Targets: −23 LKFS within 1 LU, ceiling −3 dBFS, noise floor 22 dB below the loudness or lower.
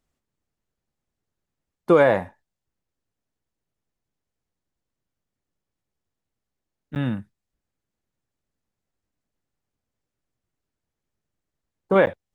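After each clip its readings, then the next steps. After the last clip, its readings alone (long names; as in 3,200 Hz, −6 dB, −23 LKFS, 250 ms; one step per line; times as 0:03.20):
number of dropouts 2; longest dropout 9.5 ms; integrated loudness −20.5 LKFS; sample peak −5.0 dBFS; target loudness −23.0 LKFS
→ repair the gap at 0:06.95/0:12.06, 9.5 ms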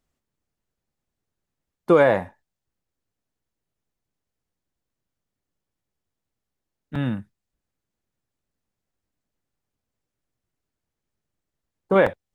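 number of dropouts 0; integrated loudness −20.5 LKFS; sample peak −5.0 dBFS; target loudness −23.0 LKFS
→ level −2.5 dB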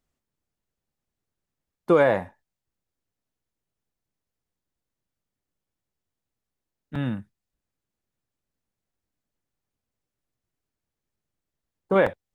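integrated loudness −23.0 LKFS; sample peak −7.5 dBFS; background noise floor −87 dBFS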